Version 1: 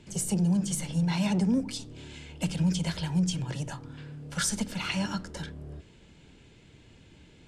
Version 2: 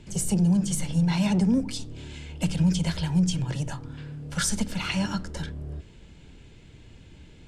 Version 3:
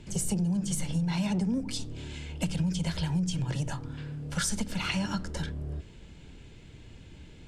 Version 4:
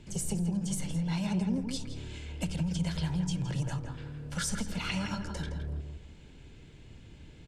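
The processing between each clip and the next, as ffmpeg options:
ffmpeg -i in.wav -af "lowshelf=frequency=79:gain=11,volume=2dB" out.wav
ffmpeg -i in.wav -af "acompressor=threshold=-26dB:ratio=5" out.wav
ffmpeg -i in.wav -filter_complex "[0:a]asplit=2[link_01][link_02];[link_02]adelay=165,lowpass=frequency=2200:poles=1,volume=-5dB,asplit=2[link_03][link_04];[link_04]adelay=165,lowpass=frequency=2200:poles=1,volume=0.26,asplit=2[link_05][link_06];[link_06]adelay=165,lowpass=frequency=2200:poles=1,volume=0.26[link_07];[link_01][link_03][link_05][link_07]amix=inputs=4:normalize=0,volume=-3.5dB" out.wav

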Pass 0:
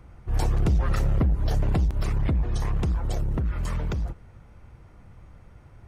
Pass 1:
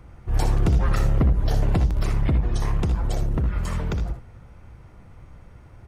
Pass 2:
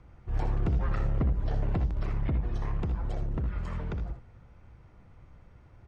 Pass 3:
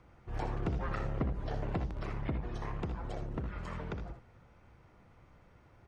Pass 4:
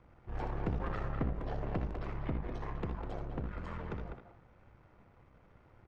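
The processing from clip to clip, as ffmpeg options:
ffmpeg -i in.wav -af "aecho=1:1:62|78:0.316|0.282,volume=2.5dB" out.wav
ffmpeg -i in.wav -filter_complex "[0:a]lowpass=6000,acrossover=split=2800[link_01][link_02];[link_02]acompressor=threshold=-55dB:ratio=5[link_03];[link_01][link_03]amix=inputs=2:normalize=0,volume=-8dB" out.wav
ffmpeg -i in.wav -af "lowshelf=frequency=140:gain=-11" out.wav
ffmpeg -i in.wav -filter_complex "[0:a]aeval=exprs='if(lt(val(0),0),0.447*val(0),val(0))':channel_layout=same,lowpass=frequency=2500:poles=1,asplit=2[link_01][link_02];[link_02]adelay=200,highpass=300,lowpass=3400,asoftclip=type=hard:threshold=-30.5dB,volume=-6dB[link_03];[link_01][link_03]amix=inputs=2:normalize=0,volume=1.5dB" out.wav

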